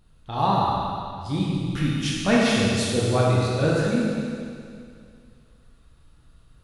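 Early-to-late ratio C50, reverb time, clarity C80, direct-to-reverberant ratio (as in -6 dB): -2.5 dB, 2.3 s, -0.5 dB, -6.0 dB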